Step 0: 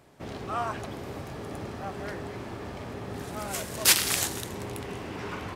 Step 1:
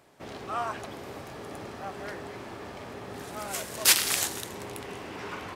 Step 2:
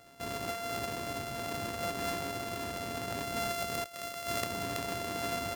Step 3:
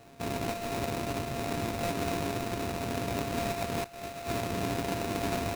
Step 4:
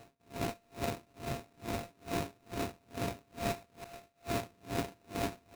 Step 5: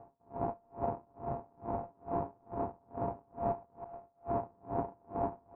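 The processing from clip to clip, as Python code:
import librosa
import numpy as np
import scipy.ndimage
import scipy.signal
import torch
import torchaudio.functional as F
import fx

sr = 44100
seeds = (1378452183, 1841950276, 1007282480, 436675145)

y1 = fx.low_shelf(x, sr, hz=230.0, db=-9.5)
y2 = np.r_[np.sort(y1[:len(y1) // 64 * 64].reshape(-1, 64), axis=1).ravel(), y1[len(y1) // 64 * 64:]]
y2 = fx.over_compress(y2, sr, threshold_db=-36.0, ratio=-1.0)
y3 = scipy.ndimage.median_filter(y2, 41, mode='constant')
y3 = fx.sample_hold(y3, sr, seeds[0], rate_hz=3200.0, jitter_pct=20)
y3 = y3 * librosa.db_to_amplitude(7.5)
y4 = y3 * 10.0 ** (-35 * (0.5 - 0.5 * np.cos(2.0 * np.pi * 2.3 * np.arange(len(y3)) / sr)) / 20.0)
y5 = fx.ladder_lowpass(y4, sr, hz=1000.0, resonance_pct=60)
y5 = y5 * librosa.db_to_amplitude(8.0)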